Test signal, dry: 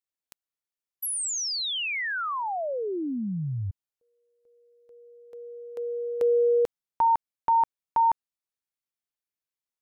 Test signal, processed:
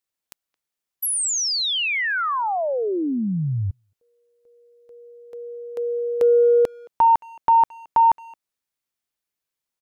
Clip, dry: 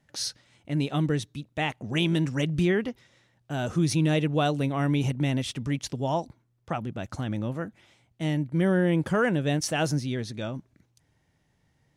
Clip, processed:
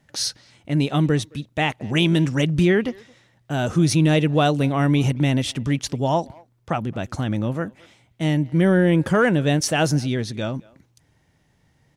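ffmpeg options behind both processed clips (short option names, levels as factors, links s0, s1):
-filter_complex "[0:a]acontrast=70,asplit=2[s0][s1];[s1]adelay=220,highpass=300,lowpass=3400,asoftclip=type=hard:threshold=0.168,volume=0.0631[s2];[s0][s2]amix=inputs=2:normalize=0"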